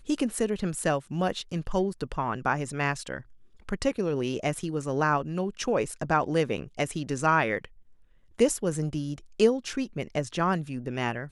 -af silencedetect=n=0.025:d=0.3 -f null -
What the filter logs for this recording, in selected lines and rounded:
silence_start: 3.18
silence_end: 3.69 | silence_duration: 0.51
silence_start: 7.65
silence_end: 8.39 | silence_duration: 0.75